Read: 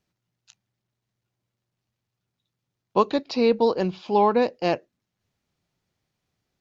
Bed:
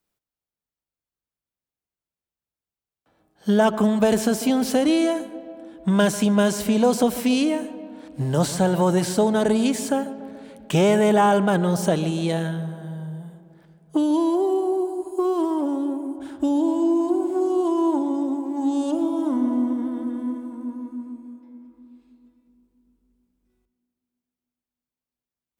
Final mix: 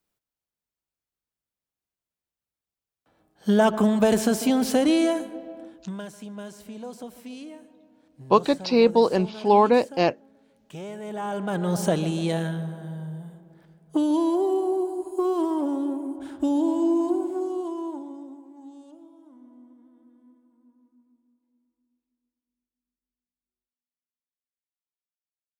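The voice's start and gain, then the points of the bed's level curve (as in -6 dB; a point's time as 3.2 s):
5.35 s, +2.0 dB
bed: 5.64 s -1 dB
6.03 s -19.5 dB
10.99 s -19.5 dB
11.77 s -2 dB
17.07 s -2 dB
19.22 s -28.5 dB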